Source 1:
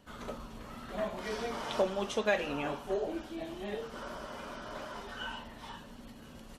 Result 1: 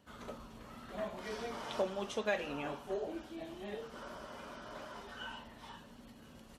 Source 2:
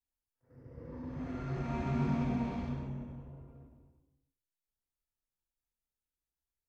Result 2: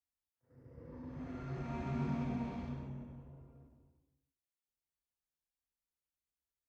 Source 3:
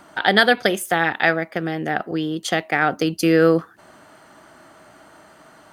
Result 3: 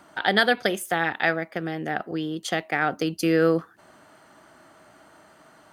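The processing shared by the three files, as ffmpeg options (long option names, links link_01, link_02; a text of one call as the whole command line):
ffmpeg -i in.wav -af "highpass=41,volume=-5dB" out.wav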